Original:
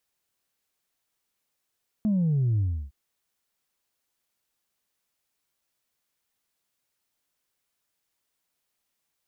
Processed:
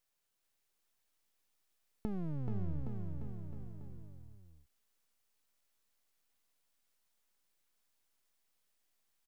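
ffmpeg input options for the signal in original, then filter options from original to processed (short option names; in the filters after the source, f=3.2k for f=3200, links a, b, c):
-f lavfi -i "aevalsrc='0.0891*clip((0.86-t)/0.32,0,1)*tanh(1.06*sin(2*PI*220*0.86/log(65/220)*(exp(log(65/220)*t/0.86)-1)))/tanh(1.06)':d=0.86:s=44100"
-af "acompressor=threshold=-33dB:ratio=10,aeval=exprs='max(val(0),0)':c=same,aecho=1:1:430|817|1165|1479|1761:0.631|0.398|0.251|0.158|0.1"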